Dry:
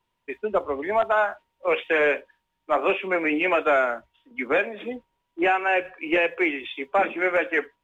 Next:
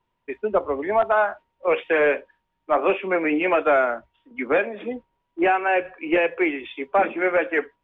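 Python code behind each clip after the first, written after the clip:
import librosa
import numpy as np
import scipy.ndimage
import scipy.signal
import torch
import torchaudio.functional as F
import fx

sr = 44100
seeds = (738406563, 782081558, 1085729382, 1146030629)

y = fx.lowpass(x, sr, hz=1700.0, slope=6)
y = y * 10.0 ** (3.0 / 20.0)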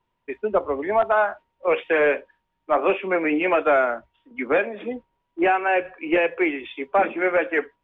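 y = x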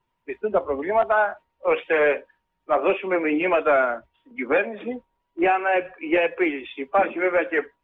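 y = fx.spec_quant(x, sr, step_db=15)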